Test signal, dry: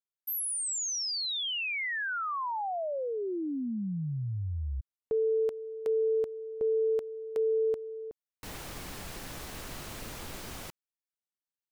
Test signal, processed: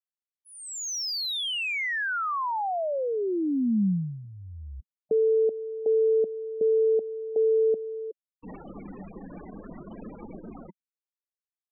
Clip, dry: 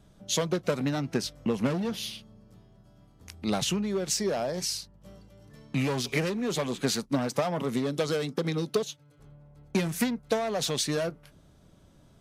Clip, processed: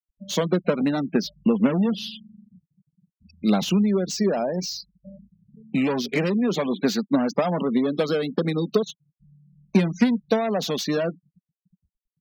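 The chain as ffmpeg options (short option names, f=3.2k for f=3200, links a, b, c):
-filter_complex "[0:a]lowpass=f=6.4k:w=0.5412,lowpass=f=6.4k:w=1.3066,afftfilt=real='re*gte(hypot(re,im),0.0158)':imag='im*gte(hypot(re,im),0.0158)':win_size=1024:overlap=0.75,lowshelf=f=150:t=q:w=3:g=-8,acrossover=split=1900[a][b];[b]asoftclip=type=tanh:threshold=-30.5dB[c];[a][c]amix=inputs=2:normalize=0,volume=4.5dB"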